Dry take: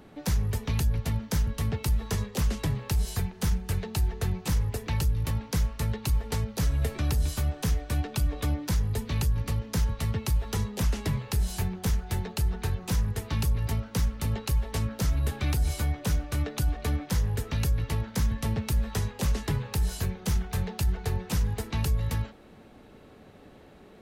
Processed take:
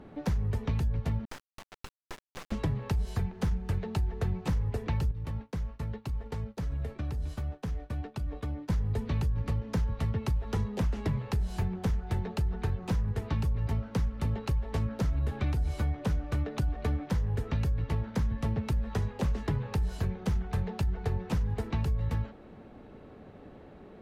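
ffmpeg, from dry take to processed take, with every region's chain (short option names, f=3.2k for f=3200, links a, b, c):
-filter_complex "[0:a]asettb=1/sr,asplit=3[a][b][c];[a]atrim=end=1.254[d];[b]atrim=start=1.25:end=2.52,asetpts=PTS-STARTPTS,afade=t=in:d=0.004:c=qsin,afade=t=out:st=1.266:d=0.004:c=qsin,highpass=830,equalizer=f=13k:w=2.2:g=-12,acrusher=bits=3:dc=4:mix=0:aa=0.000001[e];[c]atrim=start=2.516[f];[d][e]acrossfade=d=0.004:c1=hsin:c2=qsin[g];[g][f]acrossfade=d=0.004:c1=qsin:c2=hsin,asettb=1/sr,asplit=3[h][i][j];[h]atrim=end=5.114[k];[i]atrim=start=5.11:end=8.7,asetpts=PTS-STARTPTS,afade=t=in:d=0.004:c=qsin,afade=t=out:st=3.586:d=0.004:c=qsin,agate=range=-33dB:threshold=-31dB:ratio=3:release=100:detection=peak,acompressor=threshold=-34dB:ratio=4:attack=3.2:release=140:knee=1:detection=peak[l];[j]atrim=start=8.696[m];[k][l]acrossfade=d=0.004:c1=hsin:c2=qsin[n];[n][m]acrossfade=d=0.004:c1=qsin:c2=hsin,lowpass=f=1.3k:p=1,acompressor=threshold=-28dB:ratio=6,volume=2.5dB"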